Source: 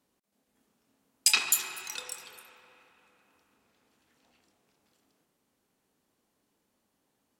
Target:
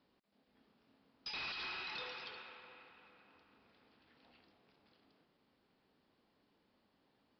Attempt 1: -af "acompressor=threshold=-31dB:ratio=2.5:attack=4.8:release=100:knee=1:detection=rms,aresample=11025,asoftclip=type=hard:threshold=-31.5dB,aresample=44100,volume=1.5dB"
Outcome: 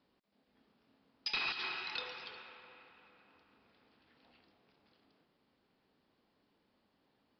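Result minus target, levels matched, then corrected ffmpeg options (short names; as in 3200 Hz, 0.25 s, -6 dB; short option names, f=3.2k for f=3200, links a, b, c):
hard clip: distortion -8 dB
-af "acompressor=threshold=-31dB:ratio=2.5:attack=4.8:release=100:knee=1:detection=rms,aresample=11025,asoftclip=type=hard:threshold=-42.5dB,aresample=44100,volume=1.5dB"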